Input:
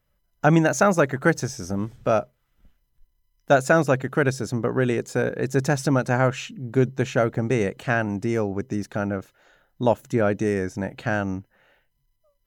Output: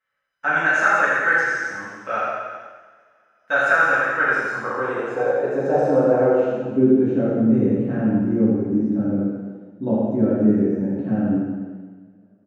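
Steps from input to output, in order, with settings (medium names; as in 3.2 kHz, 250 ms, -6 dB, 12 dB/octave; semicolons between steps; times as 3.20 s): band-pass sweep 1.7 kHz -> 230 Hz, 3.88–7.24 s; reverse bouncing-ball echo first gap 80 ms, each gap 1.1×, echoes 5; two-slope reverb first 0.9 s, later 3.1 s, from -22 dB, DRR -8.5 dB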